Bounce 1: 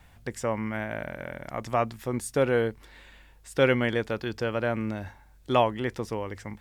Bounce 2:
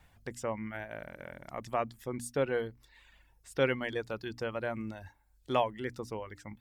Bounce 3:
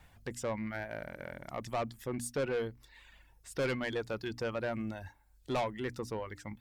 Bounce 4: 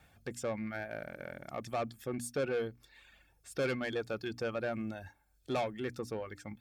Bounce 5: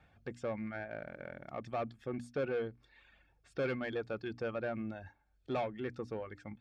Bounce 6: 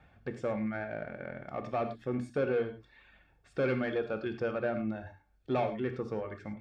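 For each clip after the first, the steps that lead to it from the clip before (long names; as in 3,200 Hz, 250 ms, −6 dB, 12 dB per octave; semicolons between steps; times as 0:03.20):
reverb reduction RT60 0.81 s; mains-hum notches 60/120/180/240/300 Hz; level −6 dB
soft clipping −30.5 dBFS, distortion −8 dB; level +2.5 dB
notch comb filter 970 Hz
Bessel low-pass filter 2,700 Hz, order 2; level −1.5 dB
high-shelf EQ 3,500 Hz −7 dB; reverb whose tail is shaped and stops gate 130 ms flat, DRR 7 dB; level +4.5 dB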